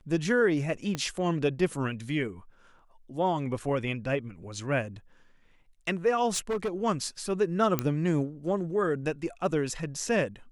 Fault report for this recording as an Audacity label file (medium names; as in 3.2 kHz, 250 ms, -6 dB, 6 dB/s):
0.950000	0.950000	pop -17 dBFS
6.310000	6.690000	clipped -25.5 dBFS
7.790000	7.790000	pop -11 dBFS